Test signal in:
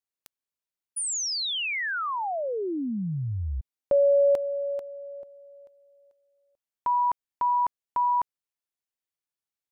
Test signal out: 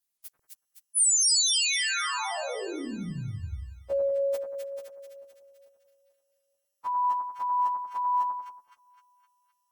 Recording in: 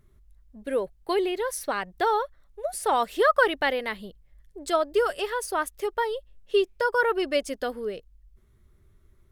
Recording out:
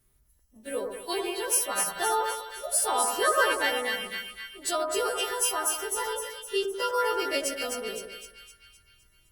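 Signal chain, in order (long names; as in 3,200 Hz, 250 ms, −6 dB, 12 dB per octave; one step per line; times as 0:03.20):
every partial snapped to a pitch grid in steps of 2 semitones
high-shelf EQ 2,900 Hz +6.5 dB
echo with a time of its own for lows and highs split 1,500 Hz, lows 93 ms, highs 257 ms, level −4 dB
level −6.5 dB
Opus 24 kbit/s 48,000 Hz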